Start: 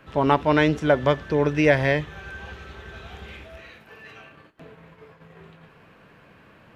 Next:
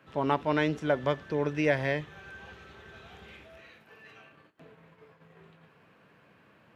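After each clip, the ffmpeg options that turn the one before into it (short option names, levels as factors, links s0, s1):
-af "highpass=100,volume=0.398"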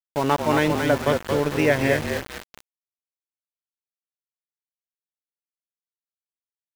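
-filter_complex "[0:a]asplit=7[s0][s1][s2][s3][s4][s5][s6];[s1]adelay=225,afreqshift=-34,volume=0.562[s7];[s2]adelay=450,afreqshift=-68,volume=0.26[s8];[s3]adelay=675,afreqshift=-102,volume=0.119[s9];[s4]adelay=900,afreqshift=-136,volume=0.055[s10];[s5]adelay=1125,afreqshift=-170,volume=0.0251[s11];[s6]adelay=1350,afreqshift=-204,volume=0.0116[s12];[s0][s7][s8][s9][s10][s11][s12]amix=inputs=7:normalize=0,aeval=exprs='val(0)*gte(abs(val(0)),0.0224)':c=same,volume=2"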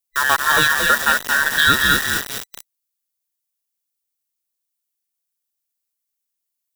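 -filter_complex "[0:a]afftfilt=real='real(if(between(b,1,1012),(2*floor((b-1)/92)+1)*92-b,b),0)':imag='imag(if(between(b,1,1012),(2*floor((b-1)/92)+1)*92-b,b),0)*if(between(b,1,1012),-1,1)':win_size=2048:overlap=0.75,acrossover=split=1700[s0][s1];[s1]crystalizer=i=3:c=0[s2];[s0][s2]amix=inputs=2:normalize=0,volume=1.41"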